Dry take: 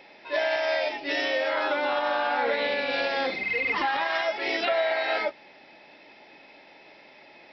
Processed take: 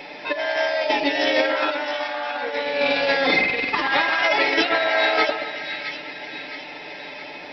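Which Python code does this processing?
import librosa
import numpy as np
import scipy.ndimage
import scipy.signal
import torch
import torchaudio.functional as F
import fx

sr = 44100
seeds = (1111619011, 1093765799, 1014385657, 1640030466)

p1 = x + 0.6 * np.pad(x, (int(6.8 * sr / 1000.0), 0))[:len(x)]
p2 = fx.over_compress(p1, sr, threshold_db=-29.0, ratio=-0.5)
p3 = p2 + fx.echo_split(p2, sr, split_hz=1600.0, low_ms=127, high_ms=666, feedback_pct=52, wet_db=-8.5, dry=0)
y = F.gain(torch.from_numpy(p3), 8.0).numpy()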